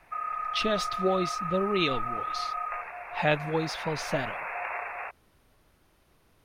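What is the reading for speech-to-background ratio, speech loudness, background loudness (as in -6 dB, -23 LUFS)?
3.5 dB, -30.5 LUFS, -34.0 LUFS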